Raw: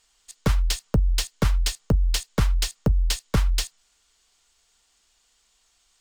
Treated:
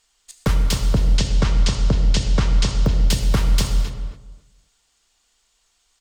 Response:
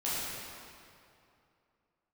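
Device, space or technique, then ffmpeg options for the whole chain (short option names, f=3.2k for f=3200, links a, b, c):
keyed gated reverb: -filter_complex "[0:a]asettb=1/sr,asplit=3[a][b][c];[a]atrim=end=0.774[d];[b]atrim=start=0.77:end=2.81,asetpts=PTS-STARTPTS,afade=t=in:d=0.004:c=qsin,afade=t=out:st=2.036:d=0.004:c=qsin,lowpass=f=7.4k:w=0.5412,lowpass=f=7.4k:w=1.3066[e];[c]atrim=start=2.806[f];[d][e]acrossfade=d=0.004:c1=hsin:c2=qsin[g];[g][f]acrossfade=d=0.004:c1=qsin:c2=hsin,asplit=3[h][i][j];[1:a]atrim=start_sample=2205[k];[i][k]afir=irnorm=-1:irlink=0[l];[j]apad=whole_len=265024[m];[l][m]sidechaingate=range=-33dB:threshold=-56dB:ratio=16:detection=peak,volume=-9.5dB[n];[h][n]amix=inputs=2:normalize=0,asplit=2[o][p];[p]adelay=264,lowpass=f=1.3k:p=1,volume=-5dB,asplit=2[q][r];[r]adelay=264,lowpass=f=1.3k:p=1,volume=0.21,asplit=2[s][t];[t]adelay=264,lowpass=f=1.3k:p=1,volume=0.21[u];[o][q][s][u]amix=inputs=4:normalize=0"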